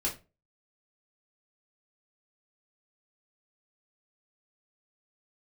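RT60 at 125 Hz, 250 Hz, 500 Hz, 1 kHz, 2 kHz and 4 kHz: 0.40, 0.35, 0.35, 0.25, 0.25, 0.20 s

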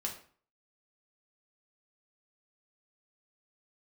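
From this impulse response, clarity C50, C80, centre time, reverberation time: 8.5 dB, 13.0 dB, 20 ms, 0.45 s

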